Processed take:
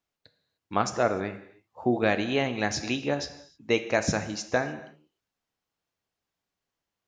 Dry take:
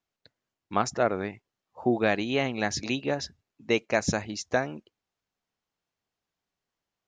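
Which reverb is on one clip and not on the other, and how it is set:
reverb whose tail is shaped and stops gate 330 ms falling, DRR 9 dB

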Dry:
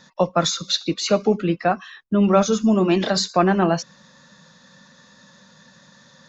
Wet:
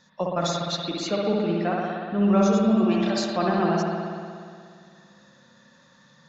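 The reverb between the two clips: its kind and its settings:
spring reverb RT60 2.2 s, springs 59 ms, chirp 65 ms, DRR −2.5 dB
level −9 dB

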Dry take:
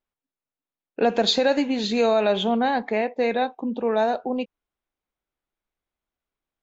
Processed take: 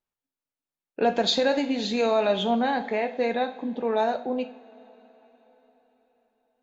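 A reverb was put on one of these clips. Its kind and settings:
coupled-rooms reverb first 0.42 s, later 4.7 s, from −22 dB, DRR 7.5 dB
level −3 dB

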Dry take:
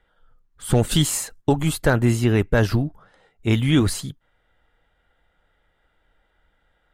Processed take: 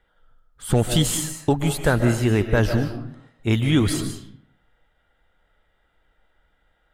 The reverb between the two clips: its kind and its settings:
comb and all-pass reverb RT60 0.63 s, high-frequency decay 0.7×, pre-delay 105 ms, DRR 7 dB
level −1 dB

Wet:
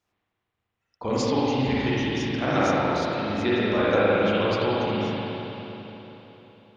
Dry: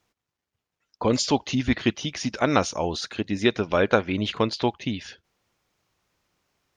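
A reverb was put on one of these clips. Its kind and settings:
spring reverb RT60 3.7 s, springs 38/52 ms, chirp 55 ms, DRR −9.5 dB
level −8.5 dB

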